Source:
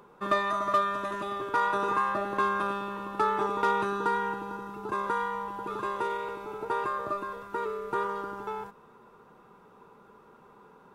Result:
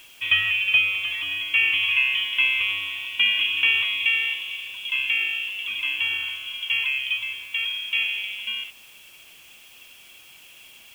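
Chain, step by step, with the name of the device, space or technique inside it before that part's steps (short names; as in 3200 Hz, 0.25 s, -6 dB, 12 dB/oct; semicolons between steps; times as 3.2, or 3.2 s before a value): scrambled radio voice (BPF 370–2800 Hz; inverted band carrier 3700 Hz; white noise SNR 27 dB); 0.61–1.15 notch 1900 Hz, Q 29; gain +6.5 dB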